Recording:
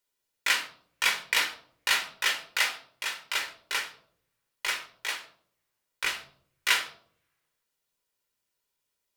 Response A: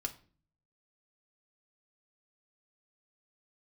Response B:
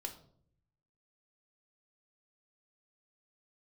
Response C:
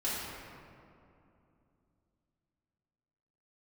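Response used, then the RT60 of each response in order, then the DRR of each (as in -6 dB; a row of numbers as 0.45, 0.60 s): B; 0.45, 0.60, 2.7 s; 3.0, 4.0, -10.0 dB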